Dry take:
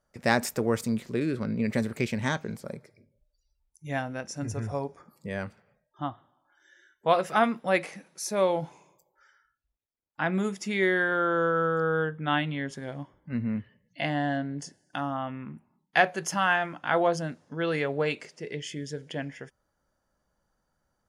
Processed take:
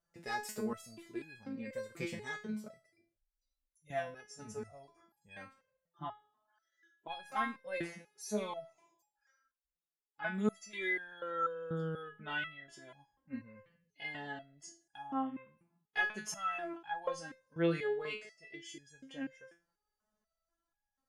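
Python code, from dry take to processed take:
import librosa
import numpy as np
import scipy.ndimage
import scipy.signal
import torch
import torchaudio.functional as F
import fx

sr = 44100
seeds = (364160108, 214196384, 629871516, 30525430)

y = fx.cheby_harmonics(x, sr, harmonics=(2,), levels_db=(-23,), full_scale_db=-6.5)
y = fx.resonator_held(y, sr, hz=4.1, low_hz=170.0, high_hz=830.0)
y = y * librosa.db_to_amplitude(4.0)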